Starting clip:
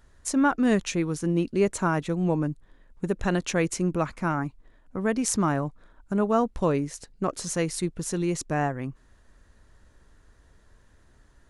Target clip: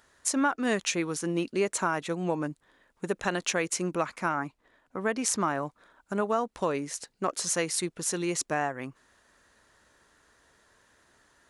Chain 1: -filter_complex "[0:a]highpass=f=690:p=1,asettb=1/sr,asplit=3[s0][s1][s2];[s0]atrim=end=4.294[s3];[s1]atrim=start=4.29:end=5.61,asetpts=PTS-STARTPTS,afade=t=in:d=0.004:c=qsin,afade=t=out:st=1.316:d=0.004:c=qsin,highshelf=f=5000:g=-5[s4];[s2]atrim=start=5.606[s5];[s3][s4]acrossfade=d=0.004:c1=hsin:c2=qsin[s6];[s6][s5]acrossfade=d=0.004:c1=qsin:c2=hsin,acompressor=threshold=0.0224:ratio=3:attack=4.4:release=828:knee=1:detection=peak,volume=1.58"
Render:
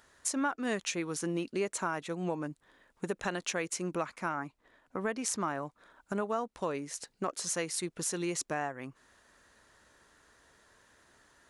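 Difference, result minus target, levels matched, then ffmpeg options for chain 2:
compression: peak gain reduction +5.5 dB
-filter_complex "[0:a]highpass=f=690:p=1,asettb=1/sr,asplit=3[s0][s1][s2];[s0]atrim=end=4.294[s3];[s1]atrim=start=4.29:end=5.61,asetpts=PTS-STARTPTS,afade=t=in:d=0.004:c=qsin,afade=t=out:st=1.316:d=0.004:c=qsin,highshelf=f=5000:g=-5[s4];[s2]atrim=start=5.606[s5];[s3][s4]acrossfade=d=0.004:c1=hsin:c2=qsin[s6];[s6][s5]acrossfade=d=0.004:c1=qsin:c2=hsin,acompressor=threshold=0.0596:ratio=3:attack=4.4:release=828:knee=1:detection=peak,volume=1.58"

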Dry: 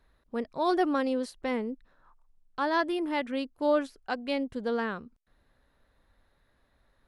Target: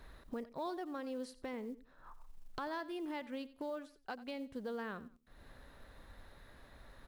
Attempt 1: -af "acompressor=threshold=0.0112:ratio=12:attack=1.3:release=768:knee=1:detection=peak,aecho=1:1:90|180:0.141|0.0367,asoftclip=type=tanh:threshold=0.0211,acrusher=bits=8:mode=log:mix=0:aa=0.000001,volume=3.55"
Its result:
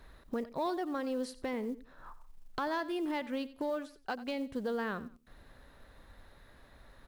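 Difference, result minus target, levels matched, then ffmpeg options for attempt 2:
compression: peak gain reduction -7.5 dB
-af "acompressor=threshold=0.00447:ratio=12:attack=1.3:release=768:knee=1:detection=peak,aecho=1:1:90|180:0.141|0.0367,asoftclip=type=tanh:threshold=0.0211,acrusher=bits=8:mode=log:mix=0:aa=0.000001,volume=3.55"

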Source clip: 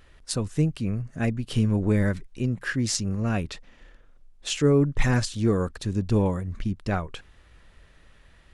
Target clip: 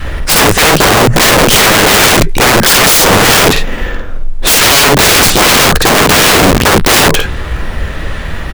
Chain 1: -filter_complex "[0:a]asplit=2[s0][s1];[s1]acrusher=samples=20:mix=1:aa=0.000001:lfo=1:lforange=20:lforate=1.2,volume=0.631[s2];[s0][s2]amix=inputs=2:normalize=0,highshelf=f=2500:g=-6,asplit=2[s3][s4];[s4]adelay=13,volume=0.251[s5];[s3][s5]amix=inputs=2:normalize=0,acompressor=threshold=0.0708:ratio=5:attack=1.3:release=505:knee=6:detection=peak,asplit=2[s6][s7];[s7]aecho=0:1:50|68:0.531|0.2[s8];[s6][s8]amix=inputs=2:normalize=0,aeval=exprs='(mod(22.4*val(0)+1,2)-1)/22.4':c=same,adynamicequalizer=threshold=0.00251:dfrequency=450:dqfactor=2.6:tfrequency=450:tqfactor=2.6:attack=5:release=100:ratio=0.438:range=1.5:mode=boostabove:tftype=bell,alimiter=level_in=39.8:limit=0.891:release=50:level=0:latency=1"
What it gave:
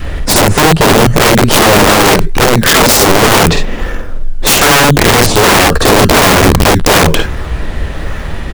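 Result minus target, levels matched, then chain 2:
compression: peak gain reduction +8 dB; decimation with a swept rate: distortion +7 dB
-filter_complex "[0:a]asplit=2[s0][s1];[s1]acrusher=samples=4:mix=1:aa=0.000001:lfo=1:lforange=4:lforate=1.2,volume=0.631[s2];[s0][s2]amix=inputs=2:normalize=0,highshelf=f=2500:g=-6,asplit=2[s3][s4];[s4]adelay=13,volume=0.251[s5];[s3][s5]amix=inputs=2:normalize=0,acompressor=threshold=0.211:ratio=5:attack=1.3:release=505:knee=6:detection=peak,asplit=2[s6][s7];[s7]aecho=0:1:50|68:0.531|0.2[s8];[s6][s8]amix=inputs=2:normalize=0,aeval=exprs='(mod(22.4*val(0)+1,2)-1)/22.4':c=same,adynamicequalizer=threshold=0.00251:dfrequency=450:dqfactor=2.6:tfrequency=450:tqfactor=2.6:attack=5:release=100:ratio=0.438:range=1.5:mode=boostabove:tftype=bell,alimiter=level_in=39.8:limit=0.891:release=50:level=0:latency=1"

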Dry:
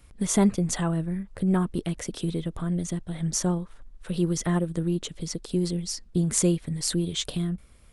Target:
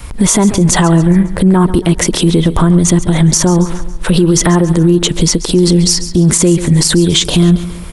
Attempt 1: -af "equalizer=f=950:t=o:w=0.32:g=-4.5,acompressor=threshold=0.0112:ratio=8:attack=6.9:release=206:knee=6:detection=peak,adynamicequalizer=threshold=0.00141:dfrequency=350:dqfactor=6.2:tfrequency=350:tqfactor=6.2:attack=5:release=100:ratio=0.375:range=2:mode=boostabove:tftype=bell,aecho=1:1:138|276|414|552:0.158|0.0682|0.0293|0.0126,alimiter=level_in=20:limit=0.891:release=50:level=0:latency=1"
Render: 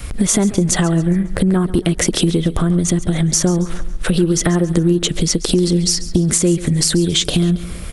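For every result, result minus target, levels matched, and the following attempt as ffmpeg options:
compression: peak gain reduction +8.5 dB; 1 kHz band -4.5 dB
-af "equalizer=f=950:t=o:w=0.32:g=-4.5,acompressor=threshold=0.0376:ratio=8:attack=6.9:release=206:knee=6:detection=peak,adynamicequalizer=threshold=0.00141:dfrequency=350:dqfactor=6.2:tfrequency=350:tqfactor=6.2:attack=5:release=100:ratio=0.375:range=2:mode=boostabove:tftype=bell,aecho=1:1:138|276|414|552:0.158|0.0682|0.0293|0.0126,alimiter=level_in=20:limit=0.891:release=50:level=0:latency=1"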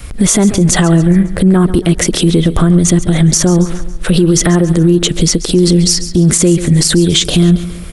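1 kHz band -4.5 dB
-af "equalizer=f=950:t=o:w=0.32:g=6.5,acompressor=threshold=0.0376:ratio=8:attack=6.9:release=206:knee=6:detection=peak,adynamicequalizer=threshold=0.00141:dfrequency=350:dqfactor=6.2:tfrequency=350:tqfactor=6.2:attack=5:release=100:ratio=0.375:range=2:mode=boostabove:tftype=bell,aecho=1:1:138|276|414|552:0.158|0.0682|0.0293|0.0126,alimiter=level_in=20:limit=0.891:release=50:level=0:latency=1"

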